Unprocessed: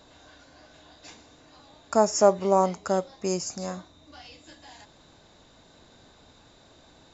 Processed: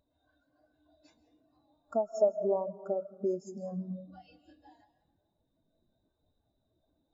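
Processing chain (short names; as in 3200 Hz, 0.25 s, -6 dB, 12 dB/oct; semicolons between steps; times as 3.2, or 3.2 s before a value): compressor 5:1, threshold -40 dBFS, peak gain reduction 24 dB; digital reverb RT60 2.1 s, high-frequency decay 0.6×, pre-delay 0.105 s, DRR 4.5 dB; spectral expander 2.5:1; gain +7 dB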